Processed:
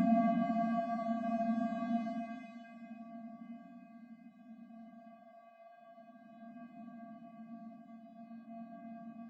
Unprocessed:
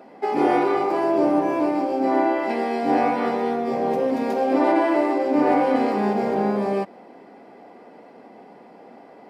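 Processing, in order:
time-frequency cells dropped at random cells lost 65%
channel vocoder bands 8, square 229 Hz
extreme stretch with random phases 4.3×, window 0.50 s, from 0:06.29

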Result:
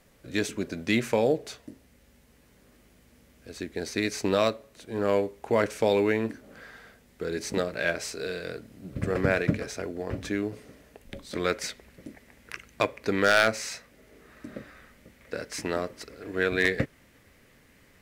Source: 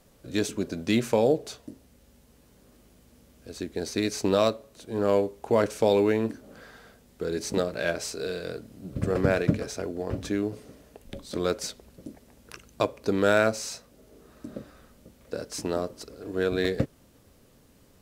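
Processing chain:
parametric band 2,000 Hz +8 dB 0.89 octaves, from 0:11.35 +15 dB
wave folding −8.5 dBFS
level −2 dB

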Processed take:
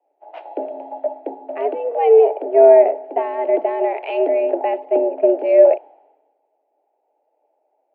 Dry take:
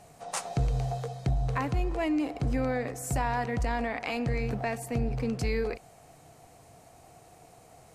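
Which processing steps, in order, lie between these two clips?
low shelf with overshoot 750 Hz +11 dB, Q 3
single-sideband voice off tune +140 Hz 220–2,700 Hz
multiband upward and downward expander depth 100%
level +1.5 dB

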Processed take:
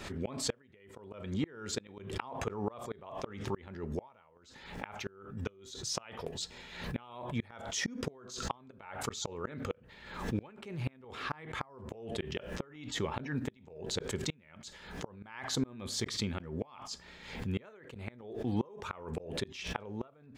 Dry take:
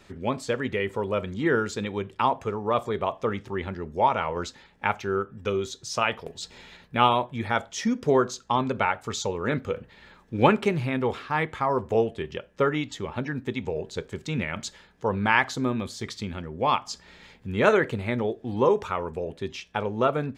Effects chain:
gate with flip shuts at −19 dBFS, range −33 dB
background raised ahead of every attack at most 69 dB per second
level −2.5 dB

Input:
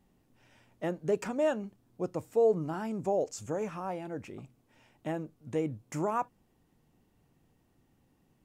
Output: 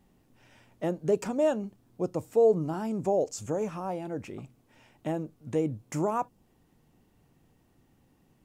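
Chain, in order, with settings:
dynamic equaliser 1,800 Hz, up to −7 dB, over −50 dBFS, Q 0.95
level +4 dB

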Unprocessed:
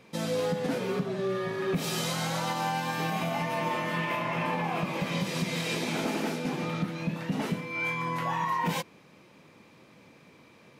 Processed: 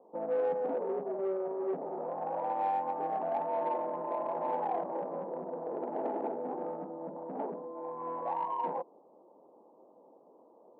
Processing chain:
Butterworth low-pass 900 Hz 48 dB per octave
in parallel at −3.5 dB: soft clipping −30.5 dBFS, distortion −12 dB
on the sum: Bessel high-pass filter 510 Hz, order 4

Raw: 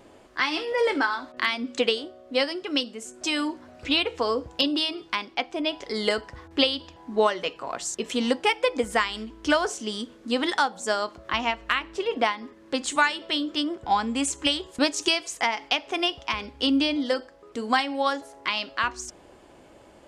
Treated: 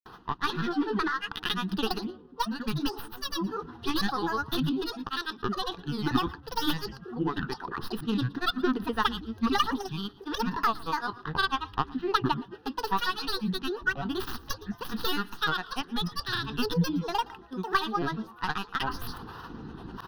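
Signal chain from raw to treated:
stylus tracing distortion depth 0.25 ms
high-shelf EQ 3,100 Hz −10.5 dB
reversed playback
upward compression, threshold −25 dBFS
reversed playback
granular cloud, pitch spread up and down by 12 semitones
phaser with its sweep stopped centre 2,200 Hz, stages 6
single-tap delay 116 ms −22.5 dB
level +1.5 dB

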